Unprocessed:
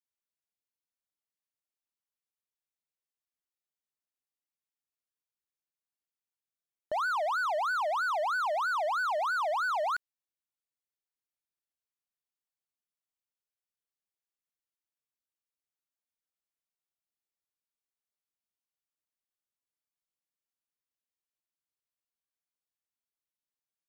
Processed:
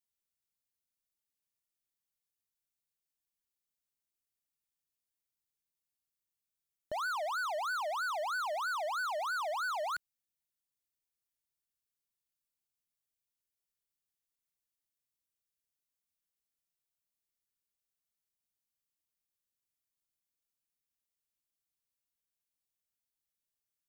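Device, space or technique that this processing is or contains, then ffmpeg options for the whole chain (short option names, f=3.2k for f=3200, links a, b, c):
smiley-face EQ: -af "lowshelf=f=170:g=5.5,equalizer=f=860:t=o:w=2.6:g=-6.5,highshelf=f=7.2k:g=5.5"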